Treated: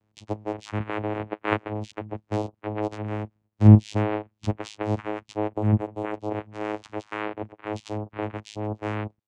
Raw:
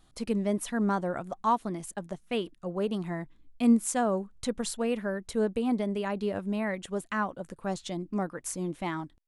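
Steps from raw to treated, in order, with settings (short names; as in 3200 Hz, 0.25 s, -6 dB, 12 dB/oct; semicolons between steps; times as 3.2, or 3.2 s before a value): per-bin compression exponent 0.6; on a send: thin delay 0.242 s, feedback 68%, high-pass 2600 Hz, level -23.5 dB; on the sum: spectral noise reduction 28 dB; in parallel at -0.5 dB: level quantiser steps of 21 dB; 6.59–7.12 on the sum: spectral repair 2100–5600 Hz both; vocoder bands 4, saw 106 Hz; 5.49–6.14 bell 5200 Hz -15 dB 0.82 oct; gain +3.5 dB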